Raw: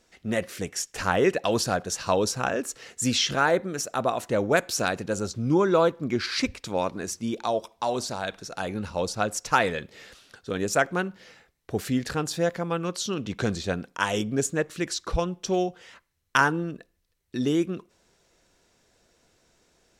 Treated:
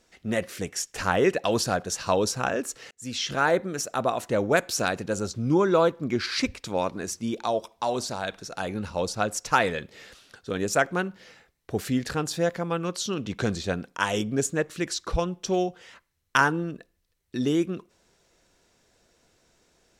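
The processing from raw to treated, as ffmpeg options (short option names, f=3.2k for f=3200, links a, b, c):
-filter_complex "[0:a]asplit=2[a][b];[a]atrim=end=2.91,asetpts=PTS-STARTPTS,afade=t=out:st=2.906:d=0.004:c=hsin[c];[b]atrim=start=2.91,asetpts=PTS-STARTPTS,afade=t=in:d=0.57[d];[c][d]concat=n=2:v=0:a=1"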